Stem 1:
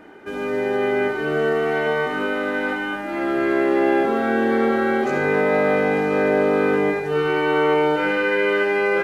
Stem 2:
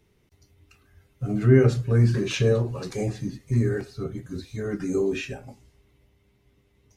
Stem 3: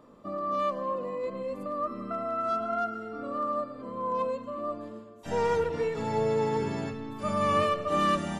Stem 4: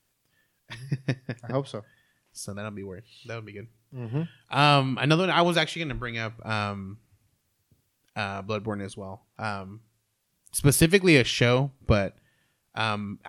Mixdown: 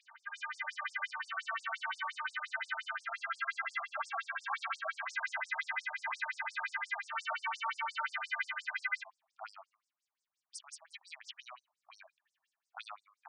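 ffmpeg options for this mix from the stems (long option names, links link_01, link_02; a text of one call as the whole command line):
ffmpeg -i stem1.wav -i stem2.wav -i stem3.wav -i stem4.wav -filter_complex "[0:a]highpass=frequency=1100:width=0.5412,highpass=frequency=1100:width=1.3066,aecho=1:1:4.4:0.71,volume=-1.5dB[link_01];[1:a]aeval=exprs='val(0)*sin(2*PI*610*n/s+610*0.7/1.8*sin(2*PI*1.8*n/s))':channel_layout=same,adelay=2350,volume=-4dB[link_02];[2:a]adelay=350,volume=-8.5dB[link_03];[3:a]volume=-7dB[link_04];[link_03][link_04]amix=inputs=2:normalize=0,acompressor=threshold=-35dB:ratio=6,volume=0dB[link_05];[link_01][link_02]amix=inputs=2:normalize=0,alimiter=limit=-18dB:level=0:latency=1:release=190,volume=0dB[link_06];[link_05][link_06]amix=inputs=2:normalize=0,acrossover=split=460|3000[link_07][link_08][link_09];[link_08]acompressor=threshold=-33dB:ratio=2[link_10];[link_07][link_10][link_09]amix=inputs=3:normalize=0,afftfilt=real='re*between(b*sr/1024,840*pow(6900/840,0.5+0.5*sin(2*PI*5.7*pts/sr))/1.41,840*pow(6900/840,0.5+0.5*sin(2*PI*5.7*pts/sr))*1.41)':imag='im*between(b*sr/1024,840*pow(6900/840,0.5+0.5*sin(2*PI*5.7*pts/sr))/1.41,840*pow(6900/840,0.5+0.5*sin(2*PI*5.7*pts/sr))*1.41)':win_size=1024:overlap=0.75" out.wav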